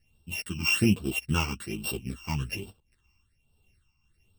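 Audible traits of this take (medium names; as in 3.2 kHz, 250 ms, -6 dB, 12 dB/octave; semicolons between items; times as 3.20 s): a buzz of ramps at a fixed pitch in blocks of 16 samples; phasing stages 8, 1.2 Hz, lowest notch 500–2000 Hz; tremolo triangle 1.7 Hz, depth 55%; a shimmering, thickened sound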